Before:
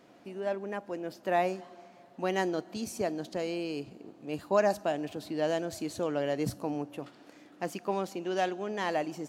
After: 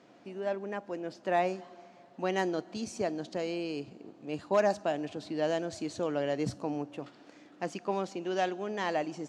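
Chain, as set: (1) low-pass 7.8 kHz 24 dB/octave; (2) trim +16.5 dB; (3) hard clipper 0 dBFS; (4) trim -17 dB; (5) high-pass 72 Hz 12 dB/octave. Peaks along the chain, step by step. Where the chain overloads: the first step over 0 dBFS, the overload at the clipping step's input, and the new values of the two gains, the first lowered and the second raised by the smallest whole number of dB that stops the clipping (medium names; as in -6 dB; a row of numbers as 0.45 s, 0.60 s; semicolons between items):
-13.5 dBFS, +3.0 dBFS, 0.0 dBFS, -17.0 dBFS, -16.0 dBFS; step 2, 3.0 dB; step 2 +13.5 dB, step 4 -14 dB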